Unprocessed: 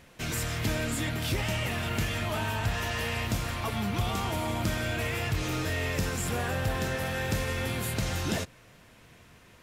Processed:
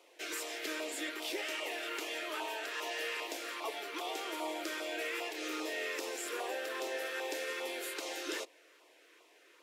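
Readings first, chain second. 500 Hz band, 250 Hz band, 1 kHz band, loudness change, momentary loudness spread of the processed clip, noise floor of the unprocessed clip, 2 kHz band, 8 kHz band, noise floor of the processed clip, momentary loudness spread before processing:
-4.5 dB, -11.5 dB, -7.0 dB, -7.5 dB, 3 LU, -56 dBFS, -5.5 dB, -6.5 dB, -63 dBFS, 1 LU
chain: high shelf 6600 Hz -6 dB; LFO notch saw down 2.5 Hz 630–1800 Hz; steep high-pass 310 Hz 72 dB/oct; gain -3 dB

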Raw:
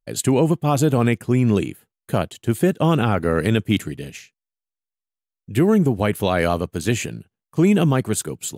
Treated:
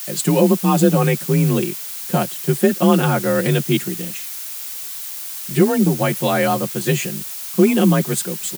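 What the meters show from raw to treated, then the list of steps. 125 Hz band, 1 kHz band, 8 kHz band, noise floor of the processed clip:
+1.0 dB, +3.0 dB, +5.5 dB, -30 dBFS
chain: frequency shift +36 Hz; comb 5.6 ms, depth 89%; added noise blue -29 dBFS; gain -1 dB

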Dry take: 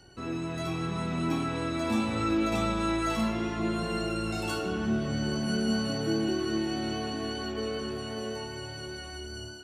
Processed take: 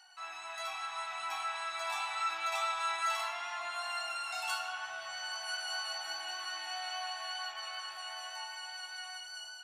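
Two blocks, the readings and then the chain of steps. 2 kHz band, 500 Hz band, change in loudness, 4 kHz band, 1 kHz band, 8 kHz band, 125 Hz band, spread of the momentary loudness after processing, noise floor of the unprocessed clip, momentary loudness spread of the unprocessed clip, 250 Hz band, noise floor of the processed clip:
0.0 dB, -15.5 dB, -6.0 dB, -0.5 dB, -0.5 dB, -1.0 dB, under -40 dB, 9 LU, -41 dBFS, 9 LU, under -40 dB, -47 dBFS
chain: elliptic high-pass 740 Hz, stop band 40 dB

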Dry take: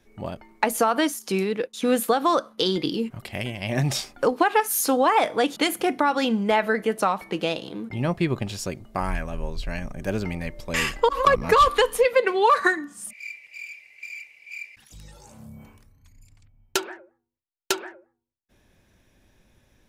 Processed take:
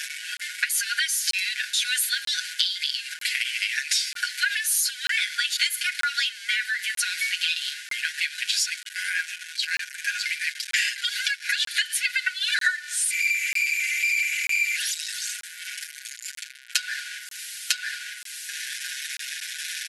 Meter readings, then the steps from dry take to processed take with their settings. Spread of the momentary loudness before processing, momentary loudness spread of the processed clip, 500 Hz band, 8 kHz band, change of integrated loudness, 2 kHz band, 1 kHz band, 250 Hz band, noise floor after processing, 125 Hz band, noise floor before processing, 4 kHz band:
18 LU, 10 LU, under -40 dB, +7.5 dB, -1.5 dB, +5.5 dB, -18.0 dB, under -40 dB, -41 dBFS, under -40 dB, -69 dBFS, +7.5 dB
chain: zero-crossing step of -32 dBFS; FFT band-pass 1400–12000 Hz; dynamic EQ 4400 Hz, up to +5 dB, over -48 dBFS, Q 3.2; compressor 6:1, threshold -31 dBFS, peak gain reduction 14 dB; comb 6.8 ms, depth 79%; crackling interface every 0.94 s, samples 1024, zero, from 0.37; gain +8 dB

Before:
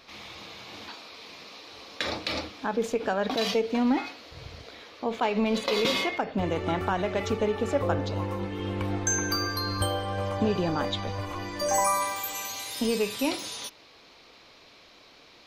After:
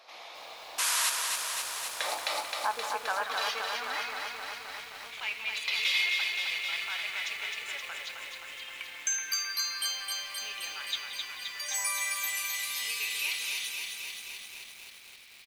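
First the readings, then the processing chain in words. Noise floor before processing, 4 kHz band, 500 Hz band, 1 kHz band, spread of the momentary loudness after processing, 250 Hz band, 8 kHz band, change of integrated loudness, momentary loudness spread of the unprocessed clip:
-54 dBFS, +2.0 dB, -17.0 dB, -6.0 dB, 14 LU, under -30 dB, +2.0 dB, -3.0 dB, 17 LU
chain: bell 11000 Hz +4.5 dB 0.68 oct; painted sound noise, 0.78–1.1, 920–12000 Hz -24 dBFS; speakerphone echo 0.18 s, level -9 dB; high-pass sweep 670 Hz -> 2300 Hz, 1.74–5.06; lo-fi delay 0.262 s, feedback 80%, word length 8-bit, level -4 dB; gain -4.5 dB

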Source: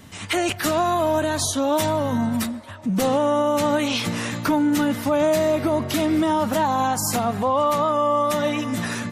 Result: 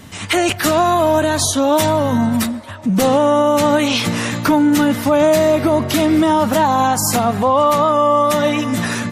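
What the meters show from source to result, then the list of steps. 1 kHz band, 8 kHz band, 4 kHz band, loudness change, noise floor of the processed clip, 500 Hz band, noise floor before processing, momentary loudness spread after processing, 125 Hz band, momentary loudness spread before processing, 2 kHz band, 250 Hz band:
+6.5 dB, +6.5 dB, +6.5 dB, +6.5 dB, -29 dBFS, +6.5 dB, -36 dBFS, 5 LU, +6.5 dB, 5 LU, +6.5 dB, +6.5 dB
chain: gain +6.5 dB; Opus 256 kbps 48000 Hz

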